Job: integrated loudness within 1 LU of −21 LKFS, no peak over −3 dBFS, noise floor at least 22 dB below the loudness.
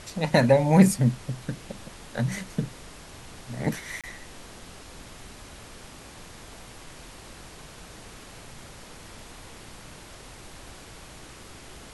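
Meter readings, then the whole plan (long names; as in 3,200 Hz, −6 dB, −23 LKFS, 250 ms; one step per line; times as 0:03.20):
number of dropouts 1; longest dropout 27 ms; background noise floor −46 dBFS; target noise floor −47 dBFS; integrated loudness −24.5 LKFS; sample peak −4.0 dBFS; target loudness −21.0 LKFS
→ repair the gap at 0:04.01, 27 ms
noise reduction from a noise print 6 dB
level +3.5 dB
brickwall limiter −3 dBFS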